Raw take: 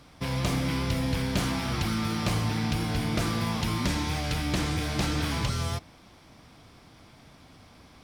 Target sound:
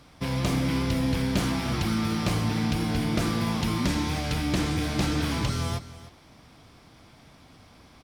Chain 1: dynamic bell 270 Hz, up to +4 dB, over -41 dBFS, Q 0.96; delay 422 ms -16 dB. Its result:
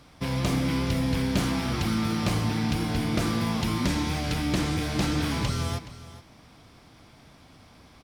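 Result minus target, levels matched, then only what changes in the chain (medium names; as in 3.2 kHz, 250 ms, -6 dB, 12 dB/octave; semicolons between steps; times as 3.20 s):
echo 117 ms late
change: delay 305 ms -16 dB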